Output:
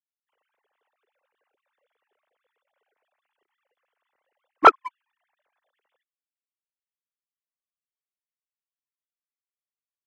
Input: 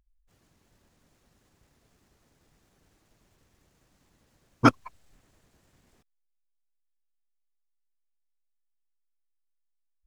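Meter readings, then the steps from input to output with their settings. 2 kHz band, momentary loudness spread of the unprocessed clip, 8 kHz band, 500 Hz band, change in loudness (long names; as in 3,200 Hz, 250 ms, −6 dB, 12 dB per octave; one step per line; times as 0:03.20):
+5.0 dB, 0 LU, can't be measured, +7.0 dB, +6.5 dB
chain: three sine waves on the formant tracks
leveller curve on the samples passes 1
dynamic equaliser 780 Hz, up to +6 dB, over −27 dBFS, Q 0.79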